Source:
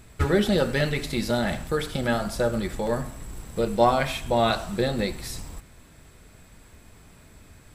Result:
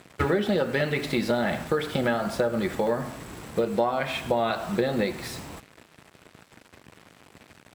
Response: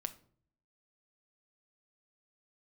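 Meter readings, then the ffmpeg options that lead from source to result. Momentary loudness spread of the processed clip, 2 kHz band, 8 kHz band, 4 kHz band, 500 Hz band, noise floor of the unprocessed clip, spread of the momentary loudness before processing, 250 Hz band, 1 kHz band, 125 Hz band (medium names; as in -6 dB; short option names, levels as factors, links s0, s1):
11 LU, 0.0 dB, -5.0 dB, -3.5 dB, -0.5 dB, -52 dBFS, 14 LU, -1.0 dB, -2.5 dB, -4.0 dB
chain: -af "bass=f=250:g=-7,treble=f=4000:g=-11,acrusher=bits=7:mix=0:aa=0.5,highpass=130,acompressor=threshold=0.0398:ratio=6,lowshelf=f=170:g=6.5,volume=2"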